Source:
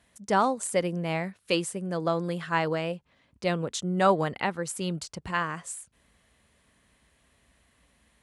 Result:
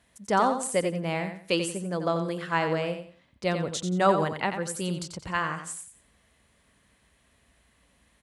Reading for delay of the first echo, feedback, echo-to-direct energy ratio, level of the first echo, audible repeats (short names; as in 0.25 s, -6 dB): 89 ms, 27%, -7.5 dB, -8.0 dB, 3